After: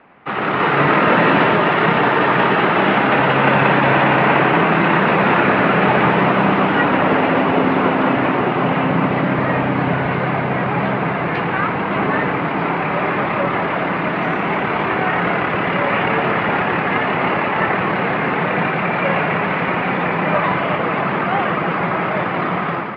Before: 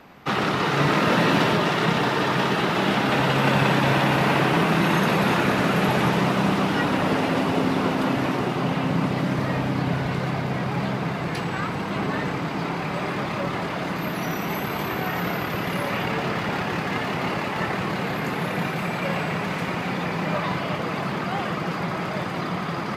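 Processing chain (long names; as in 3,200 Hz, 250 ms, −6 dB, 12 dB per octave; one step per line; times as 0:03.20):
low-pass filter 2,600 Hz 24 dB per octave
low-shelf EQ 210 Hz −10 dB
automatic gain control gain up to 9.5 dB
level +1 dB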